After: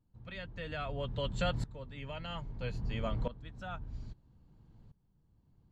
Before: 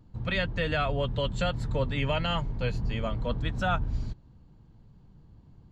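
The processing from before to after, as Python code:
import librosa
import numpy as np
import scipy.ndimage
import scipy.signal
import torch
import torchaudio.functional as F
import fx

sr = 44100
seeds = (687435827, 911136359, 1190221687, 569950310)

y = fx.tremolo_decay(x, sr, direction='swelling', hz=0.61, depth_db=18)
y = F.gain(torch.from_numpy(y), -2.0).numpy()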